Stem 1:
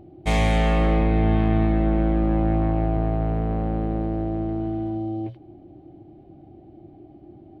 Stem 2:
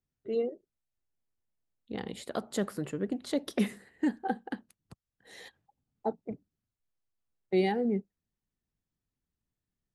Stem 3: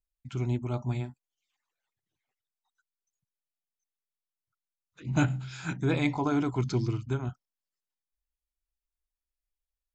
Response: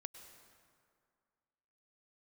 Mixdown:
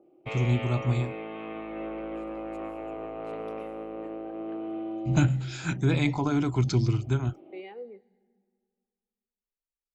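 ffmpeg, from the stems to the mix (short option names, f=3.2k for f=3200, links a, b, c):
-filter_complex "[0:a]acompressor=mode=upward:threshold=-40dB:ratio=2.5,volume=-0.5dB,afade=t=in:st=1.43:d=0.46:silence=0.316228,asplit=2[a][b];[b]volume=-24dB[c];[1:a]volume=-13.5dB,asplit=2[d][e];[e]volume=-12dB[f];[2:a]agate=range=-21dB:threshold=-43dB:ratio=16:detection=peak,lowshelf=f=140:g=8,volume=1dB[g];[a][d]amix=inputs=2:normalize=0,highpass=400,equalizer=f=490:t=q:w=4:g=8,equalizer=f=740:t=q:w=4:g=-6,equalizer=f=1.2k:t=q:w=4:g=6,equalizer=f=1.7k:t=q:w=4:g=-8,equalizer=f=2.6k:t=q:w=4:g=6,lowpass=f=3.1k:w=0.5412,lowpass=f=3.1k:w=1.3066,alimiter=level_in=4.5dB:limit=-24dB:level=0:latency=1:release=137,volume=-4.5dB,volume=0dB[h];[3:a]atrim=start_sample=2205[i];[c][f]amix=inputs=2:normalize=0[j];[j][i]afir=irnorm=-1:irlink=0[k];[g][h][k]amix=inputs=3:normalize=0,acrossover=split=270[l][m];[m]acompressor=threshold=-27dB:ratio=6[n];[l][n]amix=inputs=2:normalize=0,adynamicequalizer=threshold=0.00562:dfrequency=1800:dqfactor=0.7:tfrequency=1800:tqfactor=0.7:attack=5:release=100:ratio=0.375:range=2.5:mode=boostabove:tftype=highshelf"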